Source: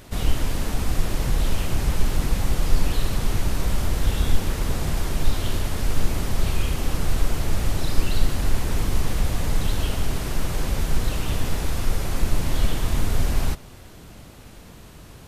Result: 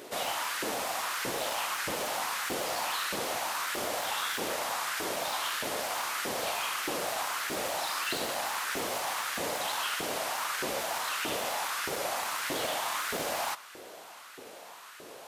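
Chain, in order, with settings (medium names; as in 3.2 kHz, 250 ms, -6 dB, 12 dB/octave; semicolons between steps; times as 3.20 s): wavefolder -14 dBFS; LFO high-pass saw up 1.6 Hz 360–1600 Hz; dynamic bell 410 Hz, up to -7 dB, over -47 dBFS, Q 2.2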